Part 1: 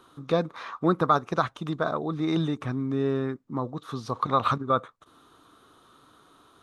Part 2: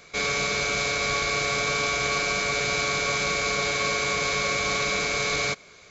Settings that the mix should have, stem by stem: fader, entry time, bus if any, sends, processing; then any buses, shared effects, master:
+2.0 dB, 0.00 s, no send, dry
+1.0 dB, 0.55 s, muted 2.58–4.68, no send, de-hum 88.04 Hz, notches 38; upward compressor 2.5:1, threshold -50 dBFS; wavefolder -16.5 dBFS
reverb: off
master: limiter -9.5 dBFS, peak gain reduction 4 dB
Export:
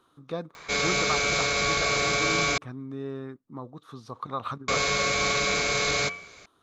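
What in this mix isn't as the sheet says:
stem 1 +2.0 dB -> -9.0 dB; stem 2: missing wavefolder -16.5 dBFS

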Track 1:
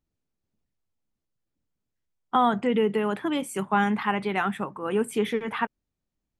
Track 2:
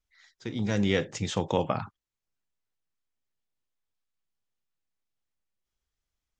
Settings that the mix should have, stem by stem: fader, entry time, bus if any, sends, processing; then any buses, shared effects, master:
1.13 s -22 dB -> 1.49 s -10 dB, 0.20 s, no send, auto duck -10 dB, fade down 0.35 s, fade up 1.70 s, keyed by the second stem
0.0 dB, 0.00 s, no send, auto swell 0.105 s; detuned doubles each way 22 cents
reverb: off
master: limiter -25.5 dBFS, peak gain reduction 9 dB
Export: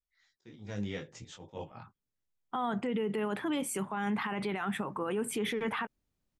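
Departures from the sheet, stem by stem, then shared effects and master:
stem 1 -22.0 dB -> -10.0 dB; stem 2 0.0 dB -> -9.0 dB

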